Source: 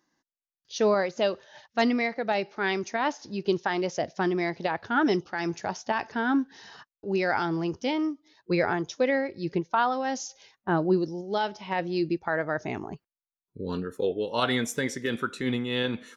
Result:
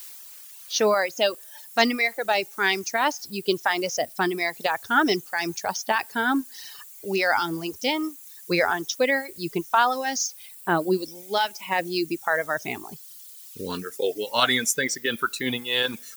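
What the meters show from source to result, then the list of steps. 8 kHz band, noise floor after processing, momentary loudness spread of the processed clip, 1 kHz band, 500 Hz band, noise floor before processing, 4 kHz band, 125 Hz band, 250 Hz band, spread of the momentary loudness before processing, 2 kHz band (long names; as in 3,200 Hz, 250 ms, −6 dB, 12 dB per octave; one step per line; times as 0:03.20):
+11.5 dB, −45 dBFS, 14 LU, +4.0 dB, +1.5 dB, below −85 dBFS, +9.0 dB, −4.0 dB, −1.0 dB, 9 LU, +6.5 dB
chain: spectral tilt +2.5 dB per octave
background noise blue −46 dBFS
reverb reduction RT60 1.6 s
level +5 dB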